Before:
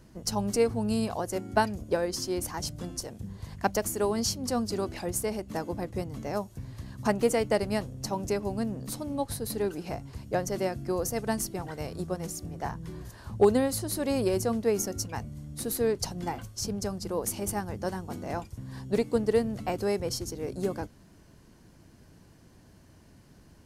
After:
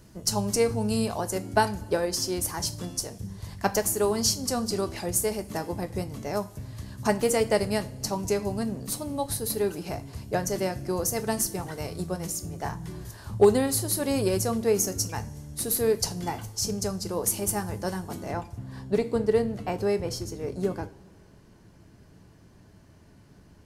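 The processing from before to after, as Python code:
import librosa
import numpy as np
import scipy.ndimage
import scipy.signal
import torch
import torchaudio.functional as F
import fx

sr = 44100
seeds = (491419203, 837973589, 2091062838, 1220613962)

y = fx.high_shelf(x, sr, hz=4200.0, db=fx.steps((0.0, 6.0), (18.29, -5.0)))
y = fx.rev_double_slope(y, sr, seeds[0], early_s=0.31, late_s=2.1, knee_db=-21, drr_db=8.0)
y = F.gain(torch.from_numpy(y), 1.0).numpy()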